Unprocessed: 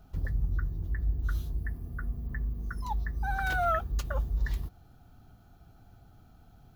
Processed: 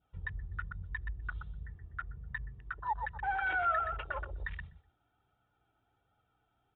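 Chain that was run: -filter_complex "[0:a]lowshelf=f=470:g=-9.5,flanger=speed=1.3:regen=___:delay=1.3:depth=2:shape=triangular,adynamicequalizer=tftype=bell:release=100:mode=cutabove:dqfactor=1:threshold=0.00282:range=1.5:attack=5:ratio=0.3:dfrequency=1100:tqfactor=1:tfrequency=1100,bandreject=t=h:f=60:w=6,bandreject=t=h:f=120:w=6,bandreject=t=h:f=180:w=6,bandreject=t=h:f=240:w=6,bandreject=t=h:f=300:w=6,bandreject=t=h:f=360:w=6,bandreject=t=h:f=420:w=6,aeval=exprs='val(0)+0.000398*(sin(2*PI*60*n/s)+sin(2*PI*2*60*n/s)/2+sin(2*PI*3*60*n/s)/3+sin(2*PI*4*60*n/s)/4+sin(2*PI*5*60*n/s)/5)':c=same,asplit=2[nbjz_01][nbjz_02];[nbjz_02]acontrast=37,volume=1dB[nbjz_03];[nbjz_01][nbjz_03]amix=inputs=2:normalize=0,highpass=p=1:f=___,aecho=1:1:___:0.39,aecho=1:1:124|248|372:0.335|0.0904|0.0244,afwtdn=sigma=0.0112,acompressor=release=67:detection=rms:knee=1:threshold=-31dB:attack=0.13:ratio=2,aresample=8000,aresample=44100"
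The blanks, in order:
-21, 220, 2.2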